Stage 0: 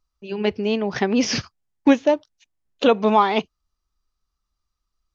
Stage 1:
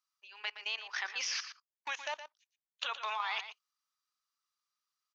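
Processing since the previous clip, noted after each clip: HPF 1100 Hz 24 dB/oct; level quantiser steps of 18 dB; on a send: echo 0.118 s -11 dB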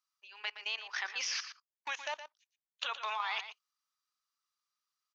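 nothing audible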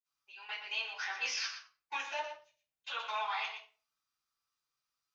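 limiter -27 dBFS, peak gain reduction 7.5 dB; reverb RT60 0.40 s, pre-delay 46 ms

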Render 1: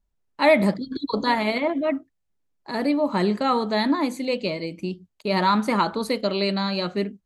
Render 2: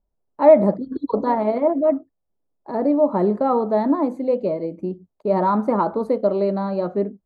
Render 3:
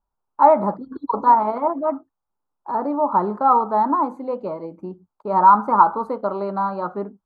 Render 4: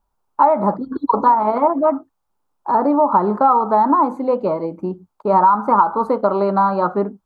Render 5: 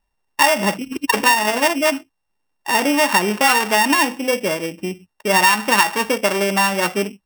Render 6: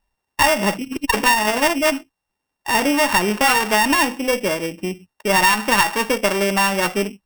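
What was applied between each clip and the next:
EQ curve 140 Hz 0 dB, 620 Hz +8 dB, 1200 Hz -1 dB, 2700 Hz -20 dB; gain -1 dB
band shelf 1100 Hz +15.5 dB 1.1 oct; gain -6 dB
compressor 6:1, threshold -19 dBFS, peak gain reduction 11.5 dB; gain +8.5 dB
sample sorter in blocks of 16 samples; gain -1.5 dB
one diode to ground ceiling -14 dBFS; gain +1 dB

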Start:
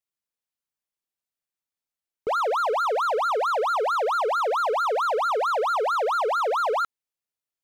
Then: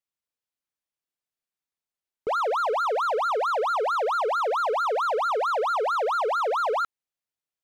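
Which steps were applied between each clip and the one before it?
high shelf 7100 Hz -4.5 dB; gain -1 dB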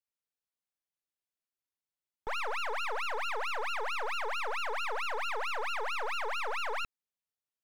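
one-sided fold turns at -32 dBFS; gain -6 dB

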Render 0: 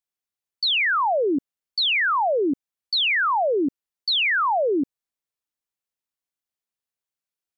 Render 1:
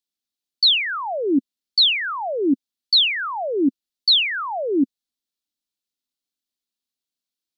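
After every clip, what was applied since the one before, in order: graphic EQ 125/250/500/1000/2000/4000 Hz -9/+10/-4/-6/-5/+9 dB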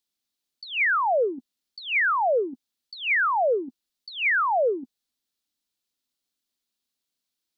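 negative-ratio compressor -24 dBFS, ratio -0.5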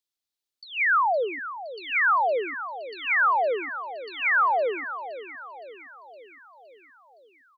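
bell 210 Hz -14 dB 0.43 oct; on a send: feedback echo 0.515 s, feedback 60%, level -11 dB; on the sum: dynamic EQ 1200 Hz, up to +8 dB, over -38 dBFS, Q 0.91; gain -5 dB

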